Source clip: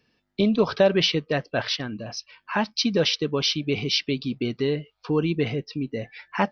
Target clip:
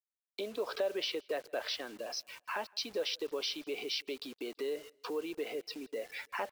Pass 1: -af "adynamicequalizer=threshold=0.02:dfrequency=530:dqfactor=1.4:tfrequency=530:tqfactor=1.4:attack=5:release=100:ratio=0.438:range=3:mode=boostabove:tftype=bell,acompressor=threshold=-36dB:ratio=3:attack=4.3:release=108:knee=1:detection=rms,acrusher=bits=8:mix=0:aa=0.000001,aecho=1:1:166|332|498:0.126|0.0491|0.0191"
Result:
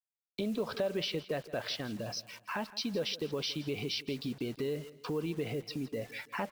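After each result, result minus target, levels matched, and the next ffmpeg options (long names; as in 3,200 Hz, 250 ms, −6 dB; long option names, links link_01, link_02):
echo-to-direct +10.5 dB; 250 Hz band +6.5 dB
-af "adynamicequalizer=threshold=0.02:dfrequency=530:dqfactor=1.4:tfrequency=530:tqfactor=1.4:attack=5:release=100:ratio=0.438:range=3:mode=boostabove:tftype=bell,acompressor=threshold=-36dB:ratio=3:attack=4.3:release=108:knee=1:detection=rms,acrusher=bits=8:mix=0:aa=0.000001,aecho=1:1:166|332:0.0376|0.0147"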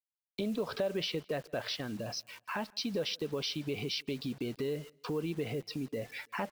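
250 Hz band +6.5 dB
-af "adynamicequalizer=threshold=0.02:dfrequency=530:dqfactor=1.4:tfrequency=530:tqfactor=1.4:attack=5:release=100:ratio=0.438:range=3:mode=boostabove:tftype=bell,acompressor=threshold=-36dB:ratio=3:attack=4.3:release=108:knee=1:detection=rms,highpass=frequency=340:width=0.5412,highpass=frequency=340:width=1.3066,acrusher=bits=8:mix=0:aa=0.000001,aecho=1:1:166|332:0.0376|0.0147"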